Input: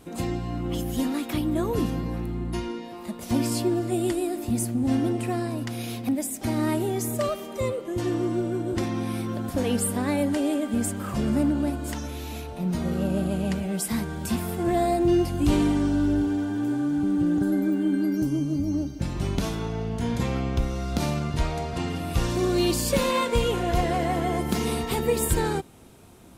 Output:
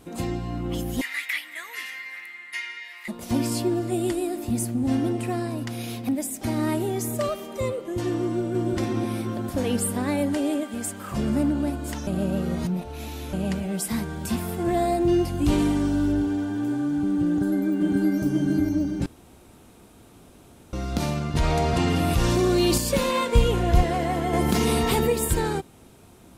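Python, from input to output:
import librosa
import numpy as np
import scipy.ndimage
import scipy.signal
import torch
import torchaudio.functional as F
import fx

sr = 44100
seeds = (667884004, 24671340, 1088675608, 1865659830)

y = fx.highpass_res(x, sr, hz=2000.0, q=12.0, at=(1.01, 3.08))
y = fx.echo_throw(y, sr, start_s=8.18, length_s=0.51, ms=360, feedback_pct=50, wet_db=-3.5)
y = fx.low_shelf(y, sr, hz=430.0, db=-9.5, at=(10.63, 11.12))
y = fx.peak_eq(y, sr, hz=14000.0, db=5.5, octaves=1.1, at=(15.58, 16.12))
y = fx.echo_throw(y, sr, start_s=17.26, length_s=0.89, ms=540, feedback_pct=60, wet_db=-2.0)
y = fx.env_flatten(y, sr, amount_pct=70, at=(21.35, 22.78))
y = fx.low_shelf(y, sr, hz=150.0, db=9.5, at=(23.35, 23.83))
y = fx.env_flatten(y, sr, amount_pct=70, at=(24.33, 25.12))
y = fx.edit(y, sr, fx.reverse_span(start_s=12.07, length_s=1.26),
    fx.room_tone_fill(start_s=19.06, length_s=1.67), tone=tone)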